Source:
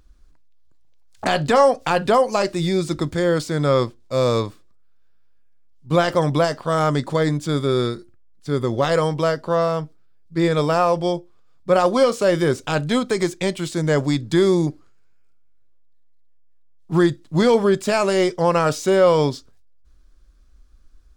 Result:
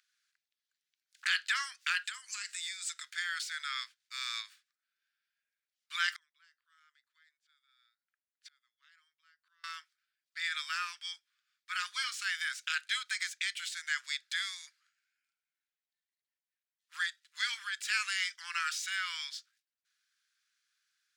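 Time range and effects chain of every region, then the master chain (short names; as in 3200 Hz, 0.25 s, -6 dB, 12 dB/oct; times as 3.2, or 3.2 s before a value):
2.04–3.04 HPF 190 Hz + bell 7700 Hz +13 dB 0.37 oct + compressor 5:1, threshold -23 dBFS
6.16–9.64 high shelf 7100 Hz -9 dB + flipped gate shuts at -24 dBFS, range -31 dB + mismatched tape noise reduction decoder only
whole clip: steep high-pass 1500 Hz 48 dB/oct; high shelf 5900 Hz -7 dB; gain -2.5 dB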